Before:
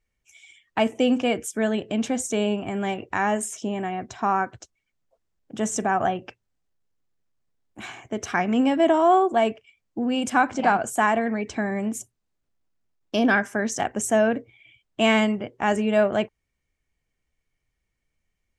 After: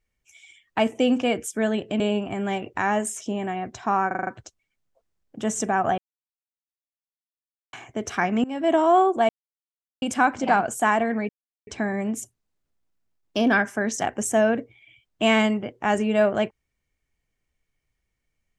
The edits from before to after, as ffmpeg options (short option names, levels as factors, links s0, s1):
-filter_complex "[0:a]asplit=13[s0][s1][s2][s3][s4][s5][s6][s7][s8][s9][s10][s11][s12];[s0]atrim=end=2.002[s13];[s1]atrim=start=2.358:end=4.472[s14];[s2]atrim=start=4.428:end=4.472[s15];[s3]atrim=start=4.428:end=4.472[s16];[s4]atrim=start=4.428:end=4.472[s17];[s5]atrim=start=4.428:end=4.472[s18];[s6]atrim=start=4.428:end=6.14,asetpts=PTS-STARTPTS,afade=t=out:st=1.708:d=0.004:c=hsin[s19];[s7]atrim=start=6.14:end=7.89,asetpts=PTS-STARTPTS,volume=0[s20];[s8]atrim=start=7.89:end=8.6,asetpts=PTS-STARTPTS,afade=t=in:d=0.004:c=hsin,afade=t=out:st=0.706:d=0.004:c=hsin:silence=0.0794328[s21];[s9]atrim=start=8.6:end=9.45,asetpts=PTS-STARTPTS,afade=t=in:d=0.33:silence=0.0794328,afade=t=out:st=0.846:d=0.004:c=hsin[s22];[s10]atrim=start=9.45:end=10.18,asetpts=PTS-STARTPTS,volume=0[s23];[s11]atrim=start=10.18:end=11.45,asetpts=PTS-STARTPTS,afade=t=in:d=0.004:c=hsin,afade=t=out:st=1.266:d=0.004:c=hsin,apad=pad_dur=0.38[s24];[s12]atrim=start=11.45,asetpts=PTS-STARTPTS,afade=t=in:d=0.004:c=hsin[s25];[s13][s14]acrossfade=d=0.004:c1=hsin:c2=hsin[s26];[s26][s15]acrossfade=d=0.004:c1=hsin:c2=hsin[s27];[s27][s16]acrossfade=d=0.004:c1=hsin:c2=hsin[s28];[s28][s17]acrossfade=d=0.004:c1=hsin:c2=hsin[s29];[s29][s18]acrossfade=d=0.004:c1=hsin:c2=hsin[s30];[s19][s20][s21][s22][s23][s24][s25]concat=n=7:v=0:a=1[s31];[s30][s31]acrossfade=d=0.004:c1=hsin:c2=hsin"